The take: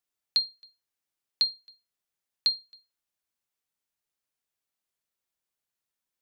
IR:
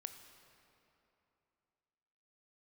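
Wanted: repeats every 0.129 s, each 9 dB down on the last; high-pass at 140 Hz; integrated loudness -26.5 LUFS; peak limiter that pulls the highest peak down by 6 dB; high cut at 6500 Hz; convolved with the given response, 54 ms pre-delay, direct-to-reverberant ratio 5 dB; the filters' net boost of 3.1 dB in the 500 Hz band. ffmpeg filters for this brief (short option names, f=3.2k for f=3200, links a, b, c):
-filter_complex "[0:a]highpass=140,lowpass=6.5k,equalizer=f=500:t=o:g=4,alimiter=limit=-20.5dB:level=0:latency=1,aecho=1:1:129|258|387|516:0.355|0.124|0.0435|0.0152,asplit=2[a][b];[1:a]atrim=start_sample=2205,adelay=54[c];[b][c]afir=irnorm=-1:irlink=0,volume=-1dB[d];[a][d]amix=inputs=2:normalize=0,volume=5.5dB"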